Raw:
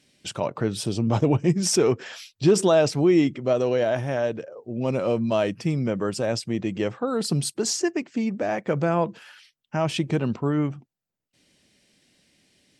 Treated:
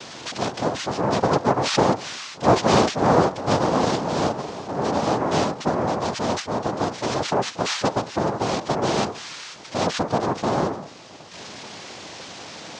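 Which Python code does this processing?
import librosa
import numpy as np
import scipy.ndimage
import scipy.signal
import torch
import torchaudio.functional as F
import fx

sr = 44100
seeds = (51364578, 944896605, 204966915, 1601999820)

y = x + 0.5 * 10.0 ** (-30.5 / 20.0) * np.sign(x)
y = fx.noise_vocoder(y, sr, seeds[0], bands=2)
y = scipy.signal.sosfilt(scipy.signal.butter(4, 6200.0, 'lowpass', fs=sr, output='sos'), y)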